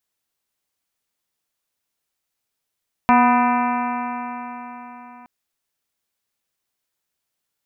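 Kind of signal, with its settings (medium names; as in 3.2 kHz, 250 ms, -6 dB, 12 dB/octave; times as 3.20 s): stretched partials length 2.17 s, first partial 242 Hz, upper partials -18/-1/1.5/-6.5/-11.5/-12.5/-15.5/-10.5/-19.5 dB, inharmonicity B 0.0021, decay 4.19 s, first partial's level -15 dB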